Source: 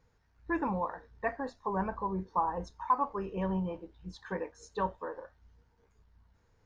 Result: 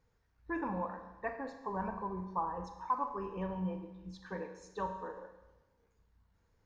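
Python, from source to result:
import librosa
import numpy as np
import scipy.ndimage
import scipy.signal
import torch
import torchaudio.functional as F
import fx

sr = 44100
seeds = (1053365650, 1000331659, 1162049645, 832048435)

y = fx.rev_schroeder(x, sr, rt60_s=1.1, comb_ms=33, drr_db=6.5)
y = y * librosa.db_to_amplitude(-5.5)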